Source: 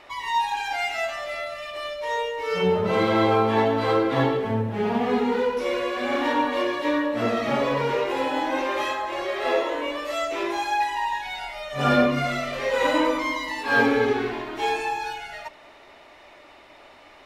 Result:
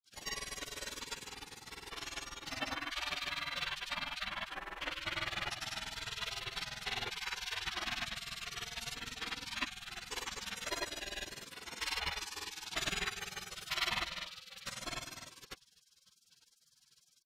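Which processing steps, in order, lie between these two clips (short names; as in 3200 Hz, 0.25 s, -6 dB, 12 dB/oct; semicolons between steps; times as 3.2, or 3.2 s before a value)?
grains 57 ms, pitch spread up and down by 0 st; spectral gate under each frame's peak -25 dB weak; gain +5.5 dB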